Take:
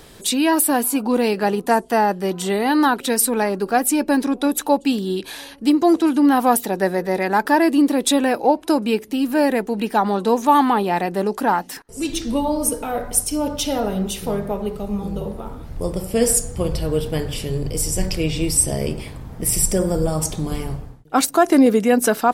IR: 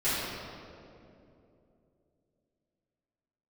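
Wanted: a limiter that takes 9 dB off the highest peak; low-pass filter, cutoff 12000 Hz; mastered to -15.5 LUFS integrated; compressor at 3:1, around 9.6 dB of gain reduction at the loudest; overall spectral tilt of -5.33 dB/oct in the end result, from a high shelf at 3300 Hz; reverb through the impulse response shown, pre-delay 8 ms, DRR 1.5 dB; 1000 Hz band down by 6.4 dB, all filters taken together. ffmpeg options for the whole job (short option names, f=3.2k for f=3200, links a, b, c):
-filter_complex "[0:a]lowpass=12k,equalizer=f=1k:t=o:g=-8.5,highshelf=f=3.3k:g=-3.5,acompressor=threshold=-23dB:ratio=3,alimiter=limit=-21dB:level=0:latency=1,asplit=2[a][b];[1:a]atrim=start_sample=2205,adelay=8[c];[b][c]afir=irnorm=-1:irlink=0,volume=-13.5dB[d];[a][d]amix=inputs=2:normalize=0,volume=11.5dB"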